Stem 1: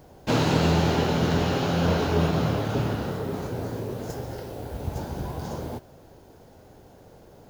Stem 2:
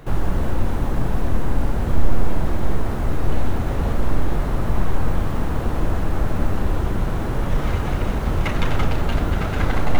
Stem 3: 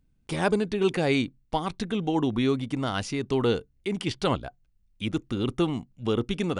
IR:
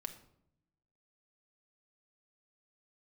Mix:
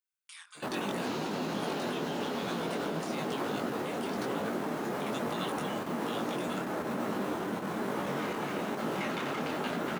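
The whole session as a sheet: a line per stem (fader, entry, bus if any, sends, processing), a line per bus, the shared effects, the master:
-3.5 dB, 0.75 s, no send, dry
-1.5 dB, 0.55 s, send -7.5 dB, dry
-3.5 dB, 0.00 s, send -6 dB, steep high-pass 1100 Hz 48 dB/oct; high shelf 6700 Hz +11.5 dB; negative-ratio compressor -37 dBFS, ratio -0.5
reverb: on, RT60 0.75 s, pre-delay 5 ms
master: HPF 200 Hz 24 dB/oct; level quantiser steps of 15 dB; detuned doubles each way 39 cents

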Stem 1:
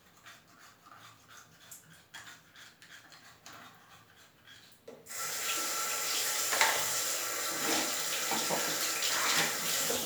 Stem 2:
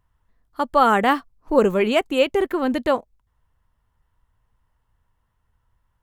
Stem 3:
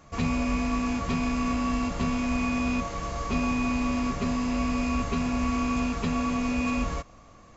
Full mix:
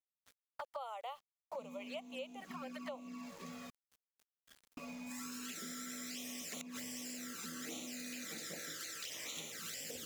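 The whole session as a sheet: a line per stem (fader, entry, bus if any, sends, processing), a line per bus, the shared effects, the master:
-2.5 dB, 0.00 s, no send, bell 900 Hz -9 dB 0.64 oct; flipped gate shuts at -15 dBFS, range -33 dB; auto duck -12 dB, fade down 1.05 s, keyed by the second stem
-9.5 dB, 0.00 s, no send, steep high-pass 520 Hz 72 dB/oct
-12.5 dB, 1.40 s, muted 3.7–4.77, no send, steep high-pass 170 Hz 96 dB/oct; cascading phaser falling 0.59 Hz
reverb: off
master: envelope flanger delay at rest 5.1 ms, full sweep at -30 dBFS; sample gate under -53.5 dBFS; compressor 6:1, threshold -43 dBFS, peak gain reduction 17 dB

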